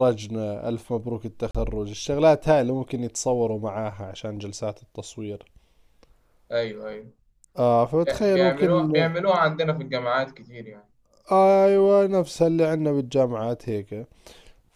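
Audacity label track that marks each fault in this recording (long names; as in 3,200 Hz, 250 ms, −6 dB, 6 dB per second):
1.510000	1.550000	drop-out 36 ms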